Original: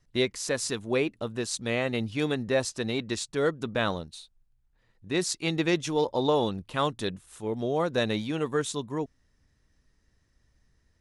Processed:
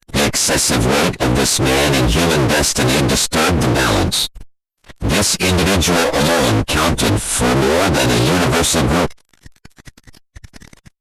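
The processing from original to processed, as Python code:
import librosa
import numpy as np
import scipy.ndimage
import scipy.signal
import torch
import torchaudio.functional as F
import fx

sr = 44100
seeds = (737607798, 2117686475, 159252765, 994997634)

y = fx.fuzz(x, sr, gain_db=51.0, gate_db=-59.0)
y = fx.power_curve(y, sr, exponent=0.5)
y = fx.pitch_keep_formants(y, sr, semitones=-10.0)
y = F.gain(torch.from_numpy(y), -1.0).numpy()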